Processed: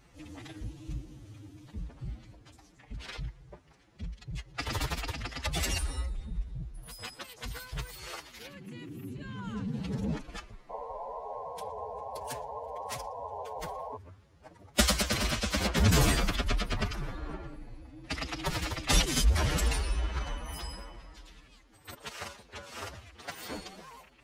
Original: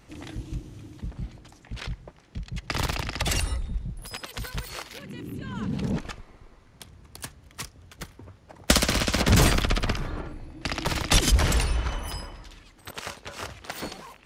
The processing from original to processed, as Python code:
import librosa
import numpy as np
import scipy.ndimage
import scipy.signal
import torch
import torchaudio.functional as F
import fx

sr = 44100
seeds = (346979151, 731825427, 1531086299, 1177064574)

y = fx.spec_paint(x, sr, seeds[0], shape='noise', start_s=6.29, length_s=1.93, low_hz=410.0, high_hz=1100.0, level_db=-34.0)
y = fx.stretch_vocoder(y, sr, factor=1.7)
y = y * 10.0 ** (-5.0 / 20.0)